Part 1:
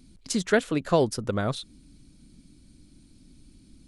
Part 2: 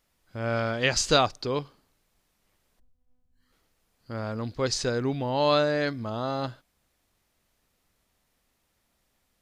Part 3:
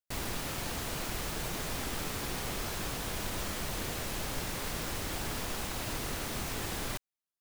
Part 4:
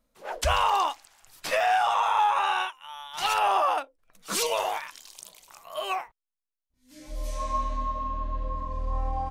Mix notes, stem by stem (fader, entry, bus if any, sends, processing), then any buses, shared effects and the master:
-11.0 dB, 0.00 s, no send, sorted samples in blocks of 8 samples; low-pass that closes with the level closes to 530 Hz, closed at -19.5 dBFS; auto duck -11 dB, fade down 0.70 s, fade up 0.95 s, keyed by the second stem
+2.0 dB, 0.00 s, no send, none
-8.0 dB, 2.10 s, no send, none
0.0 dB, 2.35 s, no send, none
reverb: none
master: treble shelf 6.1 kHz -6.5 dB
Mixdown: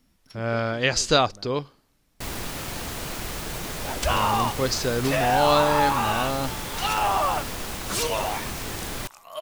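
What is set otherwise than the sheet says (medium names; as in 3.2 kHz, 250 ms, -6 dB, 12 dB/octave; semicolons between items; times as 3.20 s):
stem 3 -8.0 dB -> +4.0 dB; stem 4: entry 2.35 s -> 3.60 s; master: missing treble shelf 6.1 kHz -6.5 dB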